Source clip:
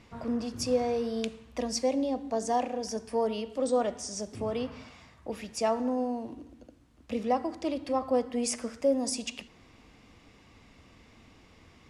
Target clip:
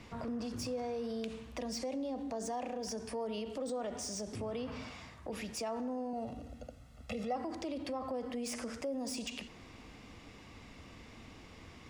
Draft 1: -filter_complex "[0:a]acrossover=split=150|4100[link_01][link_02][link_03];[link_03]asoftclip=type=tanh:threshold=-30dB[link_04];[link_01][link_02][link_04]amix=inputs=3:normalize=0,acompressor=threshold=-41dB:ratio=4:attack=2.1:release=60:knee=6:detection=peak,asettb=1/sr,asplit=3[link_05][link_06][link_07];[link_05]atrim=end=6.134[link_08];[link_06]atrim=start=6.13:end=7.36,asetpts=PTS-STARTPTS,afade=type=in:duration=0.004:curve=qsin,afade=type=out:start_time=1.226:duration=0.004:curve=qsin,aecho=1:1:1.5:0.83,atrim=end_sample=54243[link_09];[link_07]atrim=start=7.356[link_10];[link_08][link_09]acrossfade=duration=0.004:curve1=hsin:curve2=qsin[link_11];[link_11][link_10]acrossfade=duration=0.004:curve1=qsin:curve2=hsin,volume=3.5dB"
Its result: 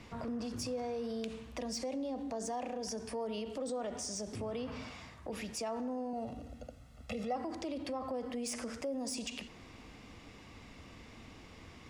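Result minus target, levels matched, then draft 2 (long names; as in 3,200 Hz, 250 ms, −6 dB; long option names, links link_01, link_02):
soft clipping: distortion −8 dB
-filter_complex "[0:a]acrossover=split=150|4100[link_01][link_02][link_03];[link_03]asoftclip=type=tanh:threshold=-39dB[link_04];[link_01][link_02][link_04]amix=inputs=3:normalize=0,acompressor=threshold=-41dB:ratio=4:attack=2.1:release=60:knee=6:detection=peak,asettb=1/sr,asplit=3[link_05][link_06][link_07];[link_05]atrim=end=6.134[link_08];[link_06]atrim=start=6.13:end=7.36,asetpts=PTS-STARTPTS,afade=type=in:duration=0.004:curve=qsin,afade=type=out:start_time=1.226:duration=0.004:curve=qsin,aecho=1:1:1.5:0.83,atrim=end_sample=54243[link_09];[link_07]atrim=start=7.356[link_10];[link_08][link_09]acrossfade=duration=0.004:curve1=hsin:curve2=qsin[link_11];[link_11][link_10]acrossfade=duration=0.004:curve1=qsin:curve2=hsin,volume=3.5dB"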